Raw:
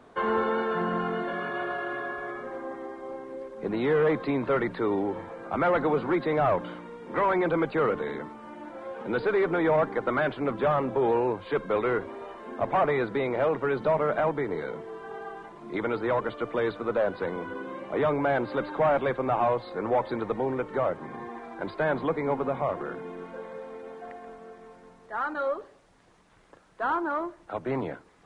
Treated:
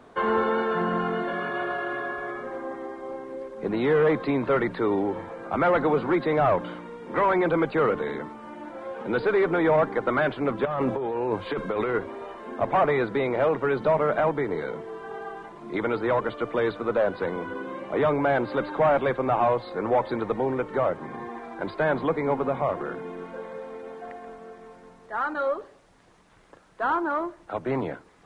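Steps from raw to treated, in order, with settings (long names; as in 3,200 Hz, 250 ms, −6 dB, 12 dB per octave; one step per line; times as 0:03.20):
0:10.65–0:11.95: compressor whose output falls as the input rises −29 dBFS, ratio −1
level +2.5 dB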